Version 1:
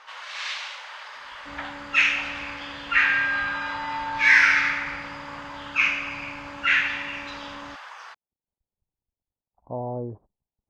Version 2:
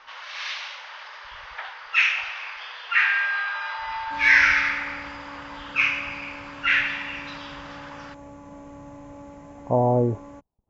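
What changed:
speech +11.0 dB
first sound: add elliptic low-pass filter 5,900 Hz, stop band 60 dB
second sound: entry +2.65 s

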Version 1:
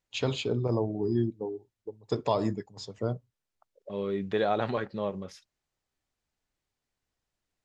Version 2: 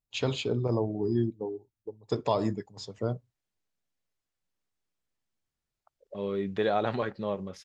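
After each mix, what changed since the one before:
second voice: entry +2.25 s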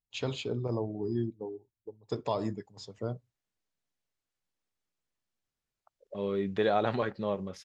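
first voice −4.5 dB

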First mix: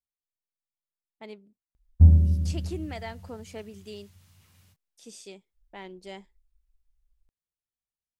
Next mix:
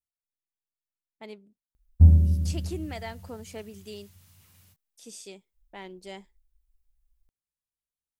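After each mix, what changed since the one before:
master: add high-shelf EQ 9,800 Hz +10.5 dB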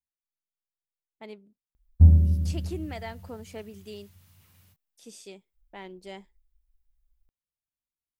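master: add parametric band 7,800 Hz −5 dB 1.7 octaves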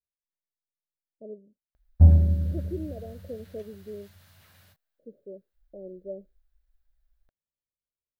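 speech: add Chebyshev low-pass filter 580 Hz, order 6
master: add graphic EQ with 15 bands 630 Hz +12 dB, 1,600 Hz +11 dB, 4,000 Hz +7 dB

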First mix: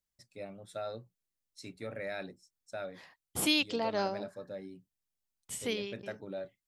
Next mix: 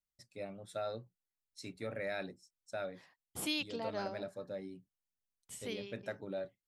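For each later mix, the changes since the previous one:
second voice −8.0 dB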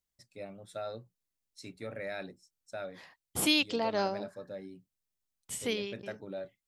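second voice +9.5 dB

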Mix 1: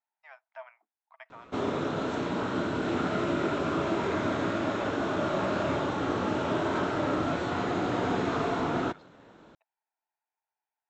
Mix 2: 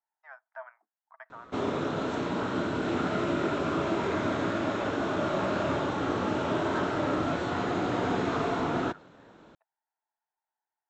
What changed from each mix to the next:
first voice: add high shelf with overshoot 2,000 Hz −7 dB, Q 3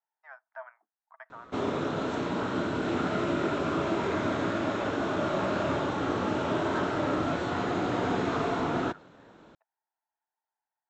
nothing changed

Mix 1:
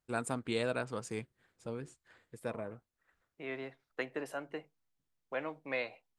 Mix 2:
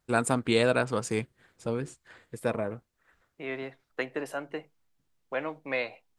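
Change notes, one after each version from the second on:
first voice +10.0 dB
second voice +5.5 dB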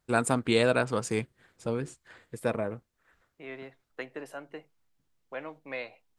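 second voice −6.5 dB

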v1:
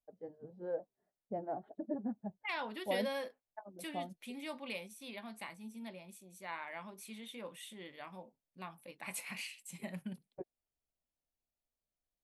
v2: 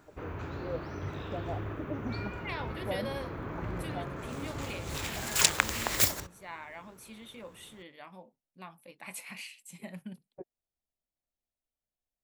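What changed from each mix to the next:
background: unmuted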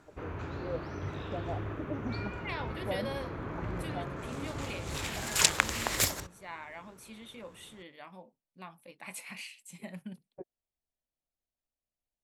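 master: add low-pass filter 12,000 Hz 12 dB per octave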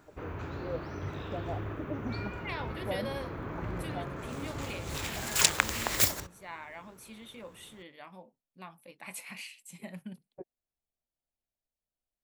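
master: remove low-pass filter 12,000 Hz 12 dB per octave

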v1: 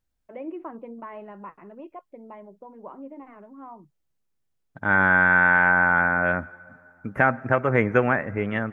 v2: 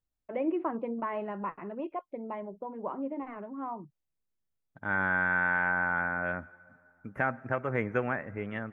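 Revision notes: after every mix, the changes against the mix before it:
first voice +5.0 dB
second voice −10.0 dB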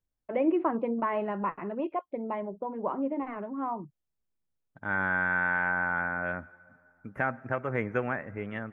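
first voice +4.5 dB

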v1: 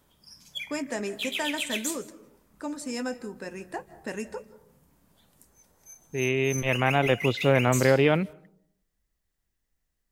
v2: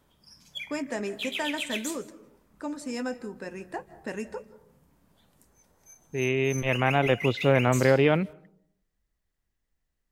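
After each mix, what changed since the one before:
master: add high-shelf EQ 5,100 Hz −6.5 dB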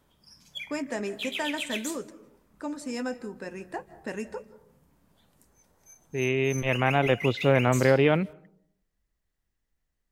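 background: send −7.5 dB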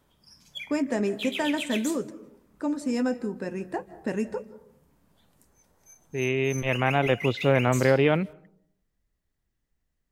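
first voice: add low-shelf EQ 500 Hz +9.5 dB

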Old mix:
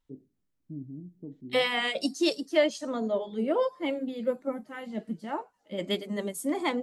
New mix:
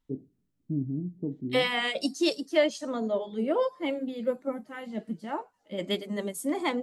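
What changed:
first voice +10.0 dB
reverb: off

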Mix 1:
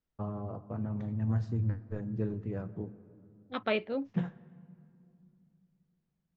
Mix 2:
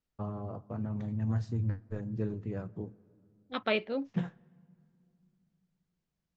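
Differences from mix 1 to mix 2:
first voice: send −7.5 dB
master: add high-shelf EQ 4,300 Hz +9.5 dB

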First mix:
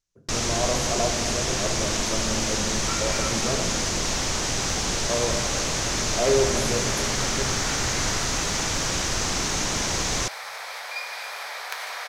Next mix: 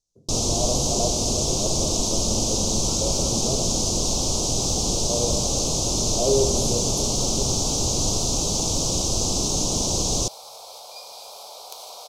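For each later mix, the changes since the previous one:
first sound +4.0 dB
master: add Butterworth band-reject 1,800 Hz, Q 0.56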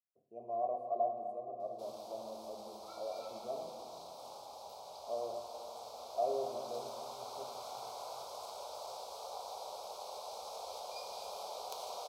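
speech: add formant filter a
first sound: muted
master: add high-shelf EQ 2,200 Hz −11 dB

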